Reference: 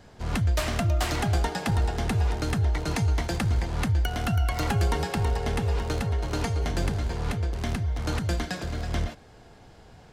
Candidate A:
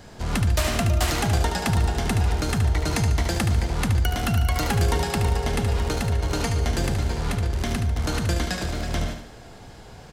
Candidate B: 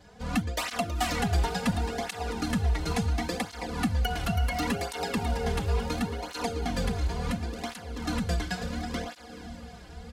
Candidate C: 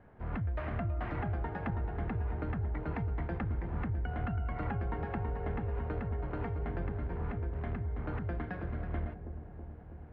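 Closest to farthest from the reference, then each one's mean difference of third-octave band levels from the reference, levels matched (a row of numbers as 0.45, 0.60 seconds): A, B, C; 3.5, 4.5, 9.0 decibels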